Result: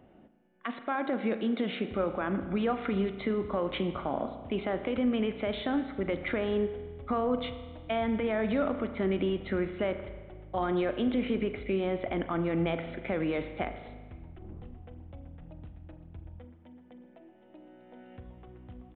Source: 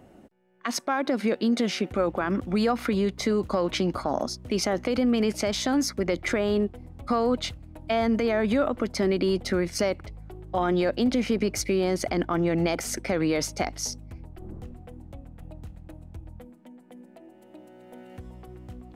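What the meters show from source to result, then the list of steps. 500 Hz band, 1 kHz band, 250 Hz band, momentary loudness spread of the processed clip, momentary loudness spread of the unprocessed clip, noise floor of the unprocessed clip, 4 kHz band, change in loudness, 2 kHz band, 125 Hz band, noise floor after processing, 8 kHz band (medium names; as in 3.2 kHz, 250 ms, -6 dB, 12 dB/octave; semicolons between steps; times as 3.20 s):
-5.0 dB, -5.0 dB, -5.0 dB, 19 LU, 20 LU, -53 dBFS, -9.5 dB, -5.5 dB, -5.0 dB, -5.0 dB, -57 dBFS, under -40 dB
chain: spring tank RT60 1.4 s, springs 36 ms, chirp 20 ms, DRR 8.5 dB; resampled via 8 kHz; trim -5.5 dB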